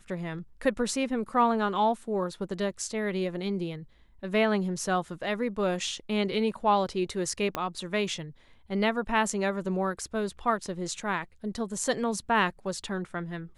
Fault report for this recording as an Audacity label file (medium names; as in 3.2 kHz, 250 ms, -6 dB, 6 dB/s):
7.550000	7.550000	pop -15 dBFS